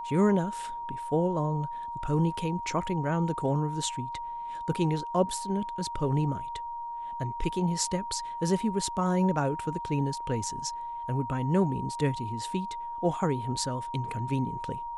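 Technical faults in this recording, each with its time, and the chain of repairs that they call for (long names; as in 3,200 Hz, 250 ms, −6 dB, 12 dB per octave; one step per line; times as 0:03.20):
whistle 940 Hz −34 dBFS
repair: notch filter 940 Hz, Q 30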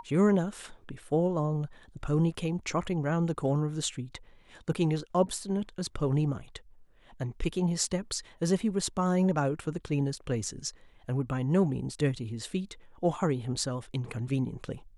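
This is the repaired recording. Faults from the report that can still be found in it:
none of them is left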